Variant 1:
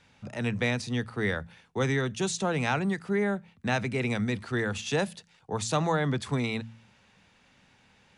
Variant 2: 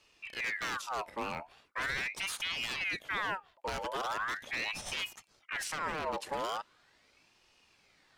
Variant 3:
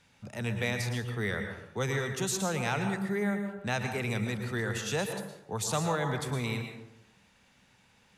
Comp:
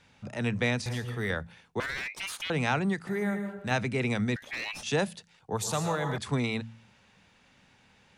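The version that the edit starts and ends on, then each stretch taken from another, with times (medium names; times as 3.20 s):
1
0.86–1.30 s: from 3
1.80–2.50 s: from 2
3.07–3.71 s: from 3
4.36–4.83 s: from 2
5.57–6.18 s: from 3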